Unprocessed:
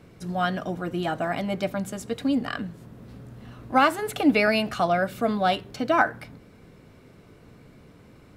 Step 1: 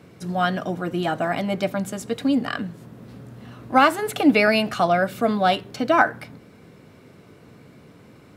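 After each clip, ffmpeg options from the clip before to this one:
-af "highpass=100,volume=3.5dB"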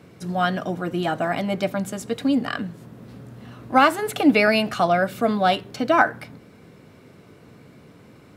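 -af anull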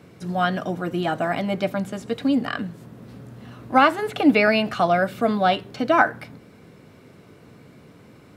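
-filter_complex "[0:a]acrossover=split=4600[a][b];[b]acompressor=threshold=-47dB:ratio=4:attack=1:release=60[c];[a][c]amix=inputs=2:normalize=0"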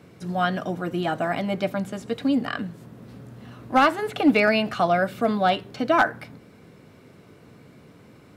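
-af "asoftclip=type=hard:threshold=-8.5dB,volume=-1.5dB"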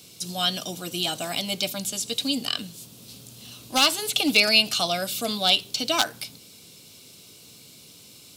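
-af "aexciter=amount=13.9:drive=6.3:freq=2.8k,volume=-7dB"

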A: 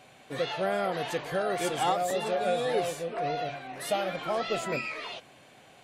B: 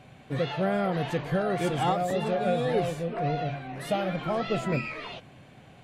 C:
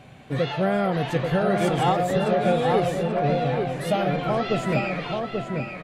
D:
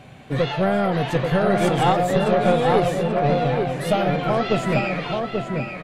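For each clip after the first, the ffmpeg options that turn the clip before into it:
-af "bass=f=250:g=14,treble=f=4k:g=-7"
-filter_complex "[0:a]asplit=2[a][b];[b]adelay=835,lowpass=f=2.8k:p=1,volume=-4dB,asplit=2[c][d];[d]adelay=835,lowpass=f=2.8k:p=1,volume=0.3,asplit=2[e][f];[f]adelay=835,lowpass=f=2.8k:p=1,volume=0.3,asplit=2[g][h];[h]adelay=835,lowpass=f=2.8k:p=1,volume=0.3[i];[a][c][e][g][i]amix=inputs=5:normalize=0,volume=4dB"
-af "aeval=exprs='0.335*(cos(1*acos(clip(val(0)/0.335,-1,1)))-cos(1*PI/2))+0.075*(cos(2*acos(clip(val(0)/0.335,-1,1)))-cos(2*PI/2))':c=same,volume=3dB"

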